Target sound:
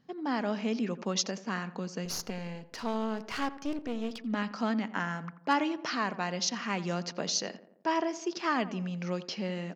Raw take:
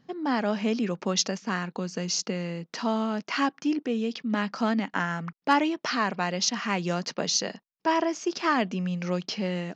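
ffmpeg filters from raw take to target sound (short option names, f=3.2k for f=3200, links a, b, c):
-filter_complex "[0:a]asettb=1/sr,asplit=3[a][b][c];[a]atrim=end=2.054[d];[b]atrim=start=2.05:end=4.22,asetpts=PTS-STARTPTS,afade=t=in:d=0.004:c=qsin,afade=t=out:st=2.166:d=0.004:c=qsin,aeval=exprs='clip(val(0),-1,0.0168)':c=same[e];[c]atrim=start=4.216[f];[d][e]acrossfade=d=0.004:c1=hsin:c2=qsin[g];[g][f]acrossfade=d=0.004:c1=qsin:c2=hsin,asplit=2[h][i];[i]adelay=86,lowpass=f=1.5k:p=1,volume=-14dB,asplit=2[j][k];[k]adelay=86,lowpass=f=1.5k:p=1,volume=0.55,asplit=2[l][m];[m]adelay=86,lowpass=f=1.5k:p=1,volume=0.55,asplit=2[n][o];[o]adelay=86,lowpass=f=1.5k:p=1,volume=0.55,asplit=2[p][q];[q]adelay=86,lowpass=f=1.5k:p=1,volume=0.55,asplit=2[r][s];[s]adelay=86,lowpass=f=1.5k:p=1,volume=0.55[t];[h][j][l][n][p][r][t]amix=inputs=7:normalize=0,volume=-5dB"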